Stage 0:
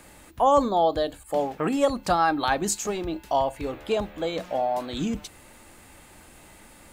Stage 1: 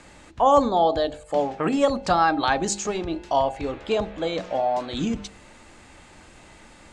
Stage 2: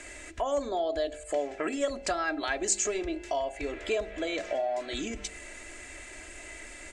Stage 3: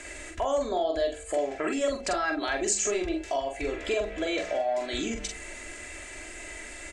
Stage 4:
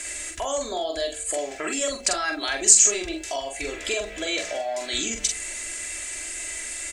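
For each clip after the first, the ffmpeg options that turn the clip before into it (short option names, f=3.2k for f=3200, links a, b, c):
-af "lowpass=f=7.4k:w=0.5412,lowpass=f=7.4k:w=1.3066,bandreject=f=50.21:t=h:w=4,bandreject=f=100.42:t=h:w=4,bandreject=f=150.63:t=h:w=4,bandreject=f=200.84:t=h:w=4,bandreject=f=251.05:t=h:w=4,bandreject=f=301.26:t=h:w=4,bandreject=f=351.47:t=h:w=4,bandreject=f=401.68:t=h:w=4,bandreject=f=451.89:t=h:w=4,bandreject=f=502.1:t=h:w=4,bandreject=f=552.31:t=h:w=4,bandreject=f=602.52:t=h:w=4,bandreject=f=652.73:t=h:w=4,bandreject=f=702.94:t=h:w=4,bandreject=f=753.15:t=h:w=4,bandreject=f=803.36:t=h:w=4,bandreject=f=853.57:t=h:w=4,volume=2.5dB"
-af "aecho=1:1:3:0.64,acompressor=threshold=-32dB:ratio=2.5,equalizer=f=125:t=o:w=1:g=-9,equalizer=f=250:t=o:w=1:g=-5,equalizer=f=500:t=o:w=1:g=6,equalizer=f=1k:t=o:w=1:g=-9,equalizer=f=2k:t=o:w=1:g=9,equalizer=f=4k:t=o:w=1:g=-4,equalizer=f=8k:t=o:w=1:g=9"
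-filter_complex "[0:a]asplit=2[a][b];[b]alimiter=limit=-24dB:level=0:latency=1,volume=-0.5dB[c];[a][c]amix=inputs=2:normalize=0,asplit=2[d][e];[e]adelay=44,volume=-4.5dB[f];[d][f]amix=inputs=2:normalize=0,volume=-3.5dB"
-af "crystalizer=i=6:c=0,volume=-2.5dB"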